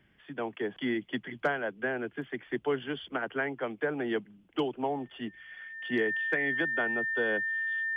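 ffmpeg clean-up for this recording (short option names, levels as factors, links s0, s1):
-af "bandreject=f=1800:w=30"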